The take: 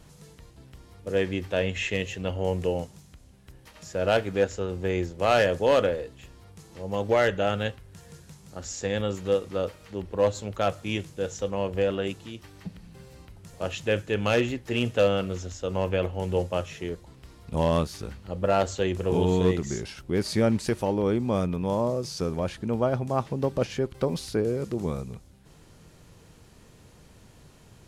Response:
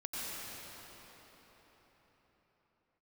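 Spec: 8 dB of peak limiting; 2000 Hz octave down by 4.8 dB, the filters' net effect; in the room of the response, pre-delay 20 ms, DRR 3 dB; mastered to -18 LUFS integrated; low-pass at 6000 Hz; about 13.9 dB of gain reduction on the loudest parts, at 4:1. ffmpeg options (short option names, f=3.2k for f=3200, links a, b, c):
-filter_complex "[0:a]lowpass=6k,equalizer=f=2k:t=o:g=-6.5,acompressor=threshold=-35dB:ratio=4,alimiter=level_in=6dB:limit=-24dB:level=0:latency=1,volume=-6dB,asplit=2[a][b];[1:a]atrim=start_sample=2205,adelay=20[c];[b][c]afir=irnorm=-1:irlink=0,volume=-6.5dB[d];[a][d]amix=inputs=2:normalize=0,volume=21.5dB"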